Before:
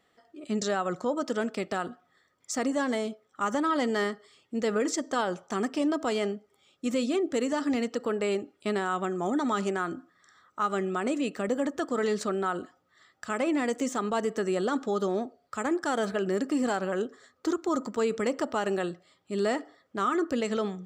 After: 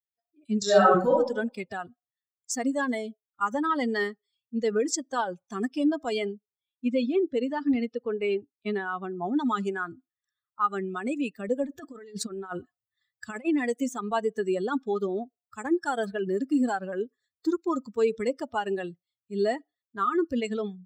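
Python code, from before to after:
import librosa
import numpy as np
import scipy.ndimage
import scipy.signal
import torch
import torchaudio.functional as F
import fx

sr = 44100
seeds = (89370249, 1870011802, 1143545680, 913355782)

y = fx.reverb_throw(x, sr, start_s=0.63, length_s=0.49, rt60_s=1.0, drr_db=-6.0)
y = fx.bessel_lowpass(y, sr, hz=4300.0, order=2, at=(6.35, 9.36))
y = fx.over_compress(y, sr, threshold_db=-31.0, ratio=-0.5, at=(11.63, 13.45))
y = fx.bin_expand(y, sr, power=2.0)
y = fx.notch(y, sr, hz=3100.0, q=19.0)
y = y * librosa.db_to_amplitude(6.0)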